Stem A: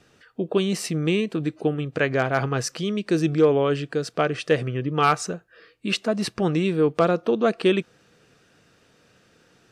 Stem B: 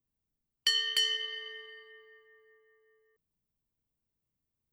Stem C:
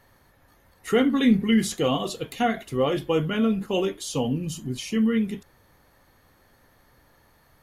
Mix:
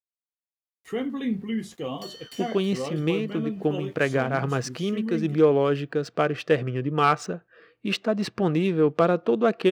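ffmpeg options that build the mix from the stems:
ffmpeg -i stem1.wav -i stem2.wav -i stem3.wav -filter_complex "[0:a]adynamicsmooth=sensitivity=8:basefreq=3800,adelay=2000,volume=-0.5dB[link_01];[1:a]aexciter=amount=5.4:drive=7.4:freq=3600,asoftclip=type=tanh:threshold=-19dB,adelay=1350,volume=-17dB,asplit=2[link_02][link_03];[link_03]volume=-8.5dB[link_04];[2:a]bandreject=frequency=1400:width=10,aeval=exprs='val(0)*gte(abs(val(0)),0.00668)':channel_layout=same,adynamicequalizer=threshold=0.0141:dfrequency=1800:dqfactor=0.7:tfrequency=1800:tqfactor=0.7:attack=5:release=100:ratio=0.375:range=2:mode=cutabove:tftype=highshelf,volume=-8.5dB,asplit=2[link_05][link_06];[link_06]apad=whole_len=516434[link_07];[link_01][link_07]sidechaincompress=threshold=-32dB:ratio=8:attack=48:release=359[link_08];[link_04]aecho=0:1:322|644|966|1288|1610|1932:1|0.42|0.176|0.0741|0.0311|0.0131[link_09];[link_08][link_02][link_05][link_09]amix=inputs=4:normalize=0,highpass=85,highshelf=frequency=4500:gain=-7" out.wav

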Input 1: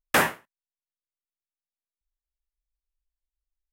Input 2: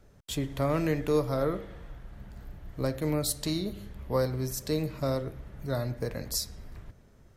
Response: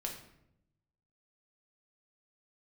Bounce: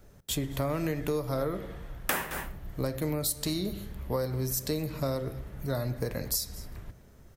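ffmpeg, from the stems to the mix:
-filter_complex "[0:a]dynaudnorm=framelen=120:gausssize=3:maxgain=5dB,adelay=1950,volume=-4dB,asplit=3[link_01][link_02][link_03];[link_02]volume=-7.5dB[link_04];[link_03]volume=-13.5dB[link_05];[1:a]volume=1.5dB,asplit=3[link_06][link_07][link_08];[link_07]volume=-16.5dB[link_09];[link_08]volume=-22.5dB[link_10];[2:a]atrim=start_sample=2205[link_11];[link_04][link_09]amix=inputs=2:normalize=0[link_12];[link_12][link_11]afir=irnorm=-1:irlink=0[link_13];[link_05][link_10]amix=inputs=2:normalize=0,aecho=0:1:217:1[link_14];[link_01][link_06][link_13][link_14]amix=inputs=4:normalize=0,highshelf=frequency=11000:gain=12,acompressor=threshold=-26dB:ratio=12"

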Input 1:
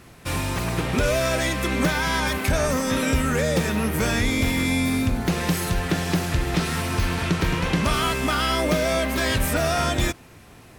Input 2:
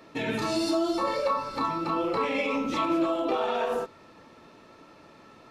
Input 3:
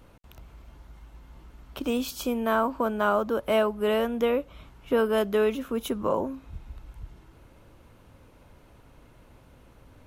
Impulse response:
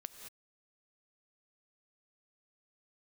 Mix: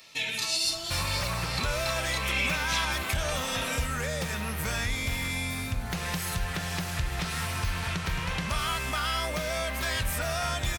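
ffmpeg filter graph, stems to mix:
-filter_complex "[0:a]acompressor=threshold=-33dB:ratio=2,adelay=650,volume=2.5dB[link_01];[1:a]alimiter=limit=-22dB:level=0:latency=1:release=209,aexciter=amount=4.9:drive=6.2:freq=2100,volume=-4.5dB[link_02];[link_01][link_02]amix=inputs=2:normalize=0,equalizer=frequency=310:width=1:gain=-14"

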